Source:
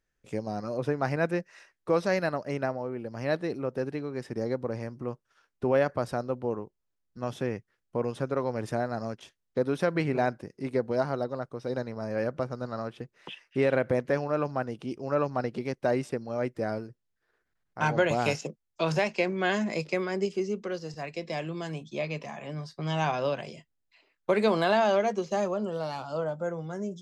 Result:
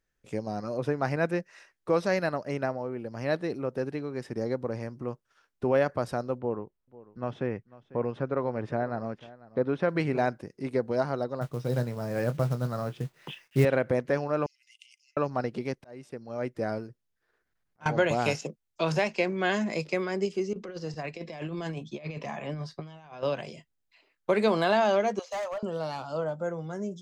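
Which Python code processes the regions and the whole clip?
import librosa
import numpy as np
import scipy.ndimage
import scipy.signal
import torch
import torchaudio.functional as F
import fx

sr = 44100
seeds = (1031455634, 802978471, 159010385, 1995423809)

y = fx.chain(x, sr, fx.lowpass(hz=2600.0, slope=12),
    fx.echo_single(ms=496, db=-19.5), at=(6.38, 9.89))
y = fx.chain(y, sr, fx.peak_eq(hz=140.0, db=15.0, octaves=0.46),
    fx.quant_companded(bits=6),
    fx.doubler(ms=25.0, db=-11.5), at=(11.41, 13.65))
y = fx.chain(y, sr, fx.over_compress(threshold_db=-35.0, ratio=-1.0),
    fx.cheby_ripple_highpass(hz=2000.0, ripple_db=9), at=(14.46, 15.17))
y = fx.chain(y, sr, fx.notch(hz=7700.0, q=20.0),
    fx.auto_swell(attack_ms=762.0), at=(15.67, 17.86))
y = fx.chain(y, sr, fx.high_shelf(hz=7000.0, db=-10.0),
    fx.over_compress(threshold_db=-36.0, ratio=-0.5), at=(20.53, 23.23))
y = fx.chain(y, sr, fx.steep_highpass(hz=540.0, slope=48),
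    fx.clip_hard(threshold_db=-29.5), at=(25.19, 25.63))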